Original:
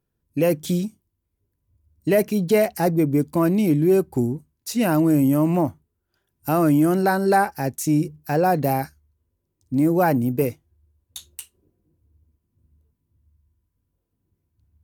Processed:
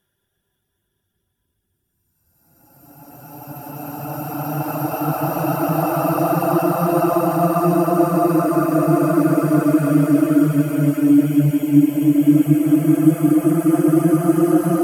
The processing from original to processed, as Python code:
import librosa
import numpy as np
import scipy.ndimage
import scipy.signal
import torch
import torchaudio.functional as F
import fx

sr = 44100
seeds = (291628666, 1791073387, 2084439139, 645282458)

y = fx.paulstretch(x, sr, seeds[0], factor=24.0, window_s=0.25, from_s=6.27)
y = fx.dereverb_blind(y, sr, rt60_s=0.51)
y = F.gain(torch.from_numpy(y), 2.5).numpy()